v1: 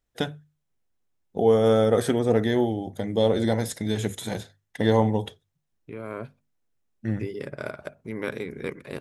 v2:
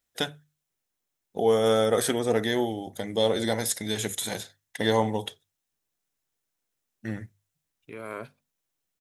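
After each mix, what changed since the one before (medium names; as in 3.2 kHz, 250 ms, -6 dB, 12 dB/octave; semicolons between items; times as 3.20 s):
second voice: entry +2.00 s; master: add tilt EQ +2.5 dB/octave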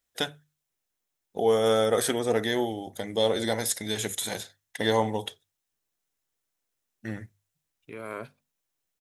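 first voice: add peaking EQ 160 Hz -3 dB 1.8 oct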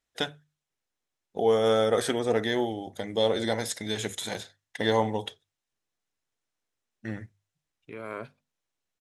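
master: add distance through air 54 m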